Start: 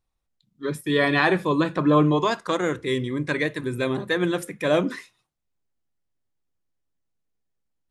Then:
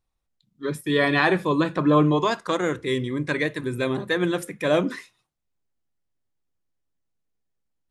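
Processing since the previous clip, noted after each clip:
no processing that can be heard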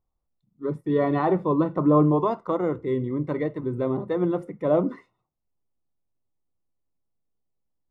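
Savitzky-Golay smoothing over 65 samples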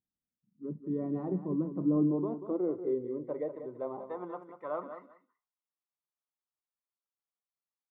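band-pass filter sweep 220 Hz → 1,200 Hz, 0:01.81–0:04.65
repeating echo 188 ms, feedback 15%, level −10 dB
level −3.5 dB

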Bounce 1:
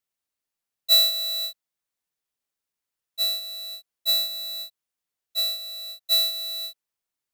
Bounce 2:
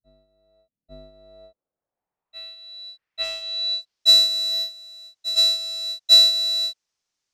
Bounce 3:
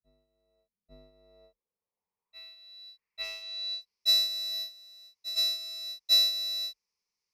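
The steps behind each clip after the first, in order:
low-pass filter sweep 140 Hz → 5,900 Hz, 0:00.27–0:04.10; backwards echo 847 ms −15 dB; level +5.5 dB
EQ curve with evenly spaced ripples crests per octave 0.85, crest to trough 11 dB; level −8 dB

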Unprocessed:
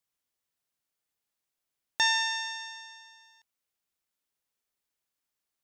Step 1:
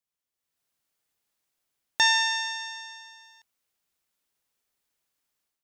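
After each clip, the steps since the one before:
automatic gain control gain up to 11 dB
level −5.5 dB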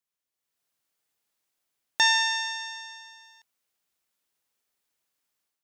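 low-shelf EQ 110 Hz −6.5 dB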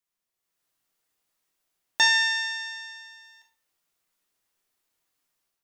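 rectangular room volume 52 cubic metres, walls mixed, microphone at 0.56 metres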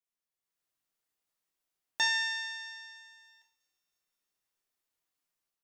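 delay with a high-pass on its return 321 ms, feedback 53%, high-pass 5,200 Hz, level −23.5 dB
level −8.5 dB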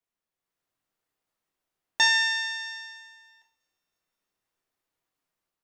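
one half of a high-frequency compander decoder only
level +7.5 dB

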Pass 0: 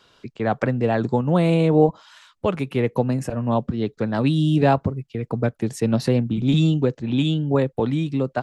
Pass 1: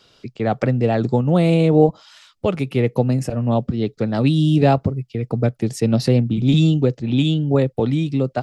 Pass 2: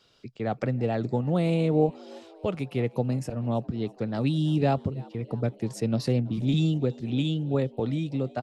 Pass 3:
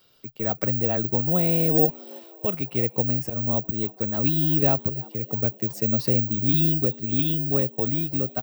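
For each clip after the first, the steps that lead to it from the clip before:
thirty-one-band graphic EQ 125 Hz +3 dB, 1,000 Hz −8 dB, 1,600 Hz −6 dB, 5,000 Hz +5 dB; level +2.5 dB
echo with shifted repeats 328 ms, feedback 63%, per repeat +84 Hz, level −23.5 dB; level −9 dB
bad sample-rate conversion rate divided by 2×, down filtered, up zero stuff

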